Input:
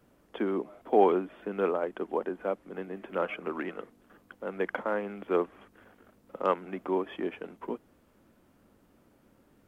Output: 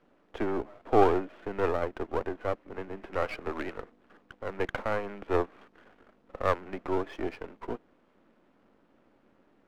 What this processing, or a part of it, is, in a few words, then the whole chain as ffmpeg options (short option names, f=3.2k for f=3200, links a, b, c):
crystal radio: -af "highpass=210,lowpass=3.1k,aeval=exprs='if(lt(val(0),0),0.251*val(0),val(0))':c=same,volume=3.5dB"